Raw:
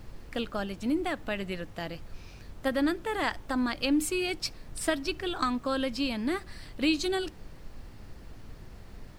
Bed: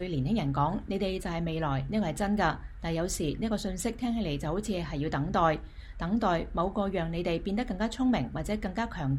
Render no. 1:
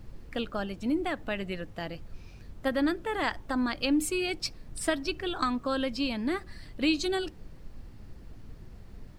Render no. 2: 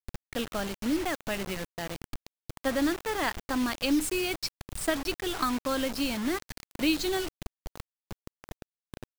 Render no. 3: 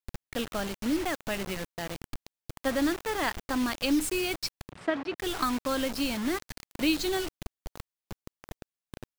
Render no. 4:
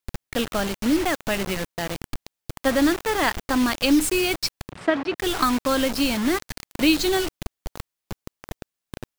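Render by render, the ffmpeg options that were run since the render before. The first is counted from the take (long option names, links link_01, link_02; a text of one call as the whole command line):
ffmpeg -i in.wav -af "afftdn=noise_reduction=6:noise_floor=-48" out.wav
ffmpeg -i in.wav -af "acrusher=bits=5:mix=0:aa=0.000001" out.wav
ffmpeg -i in.wav -filter_complex "[0:a]asettb=1/sr,asplit=3[link_01][link_02][link_03];[link_01]atrim=end=4.694[link_04];[link_02]atrim=start=4.69:end=5.18,asetpts=PTS-STARTPTS,afade=type=in:duration=0.004:curve=qsin,afade=type=out:start_time=0.486:duration=0.004:curve=qsin,highpass=150,lowpass=2300[link_05];[link_03]atrim=start=5.176[link_06];[link_04][link_05]acrossfade=duration=0.004:curve1=hsin:curve2=qsin[link_07];[link_07][link_06]acrossfade=duration=0.004:curve1=qsin:curve2=hsin" out.wav
ffmpeg -i in.wav -af "volume=7.5dB" out.wav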